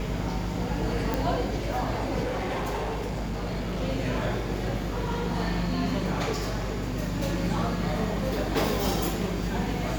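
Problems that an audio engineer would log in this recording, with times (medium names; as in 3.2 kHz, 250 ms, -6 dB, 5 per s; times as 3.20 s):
buzz 50 Hz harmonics 16 -33 dBFS
1.14 s: pop
2.23–3.82 s: clipped -26.5 dBFS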